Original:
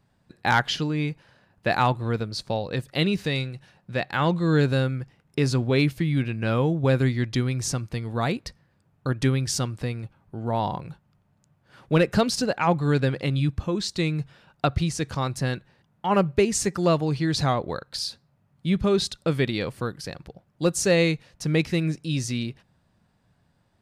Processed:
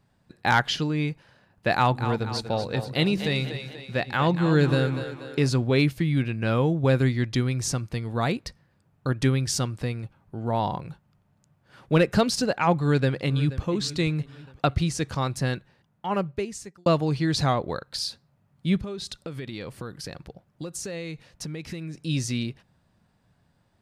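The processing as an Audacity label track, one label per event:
1.740000	5.490000	split-band echo split 300 Hz, lows 0.125 s, highs 0.241 s, level -9.5 dB
12.800000	13.660000	echo throw 0.48 s, feedback 45%, level -15.5 dB
15.560000	16.860000	fade out
18.810000	22.000000	compressor 16:1, threshold -30 dBFS

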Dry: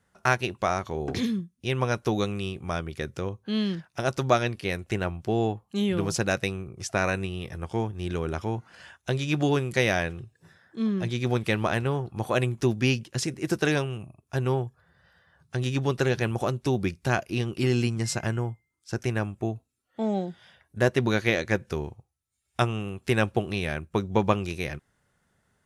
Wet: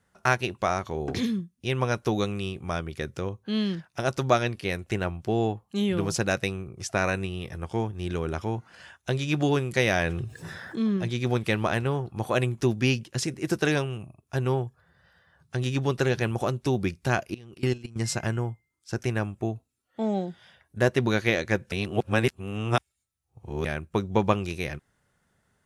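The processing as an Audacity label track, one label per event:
9.870000	10.970000	fast leveller amount 50%
17.340000	17.960000	level quantiser steps of 23 dB
21.720000	23.650000	reverse

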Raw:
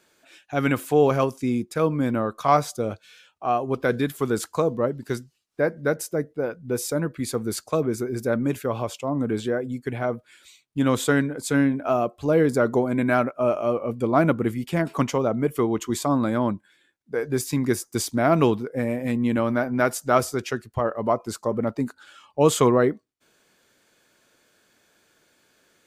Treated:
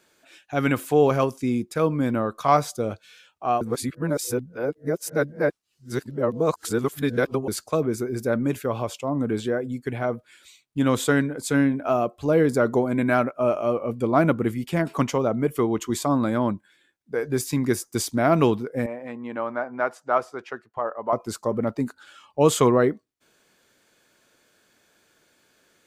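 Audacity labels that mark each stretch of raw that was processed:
3.610000	7.480000	reverse
18.860000	21.130000	band-pass 940 Hz, Q 1.1

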